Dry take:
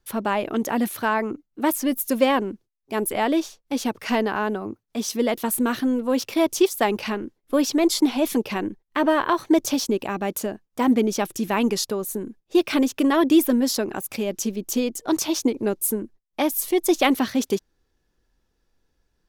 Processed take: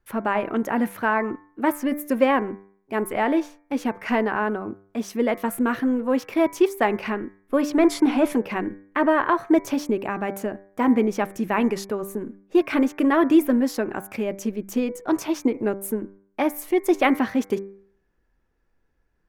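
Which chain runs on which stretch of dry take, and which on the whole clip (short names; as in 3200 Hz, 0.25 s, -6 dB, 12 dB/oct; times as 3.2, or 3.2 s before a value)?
7.72–8.33 Chebyshev low-pass 11000 Hz, order 3 + sample leveller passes 1
whole clip: resonant high shelf 2800 Hz -9.5 dB, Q 1.5; de-hum 98.28 Hz, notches 24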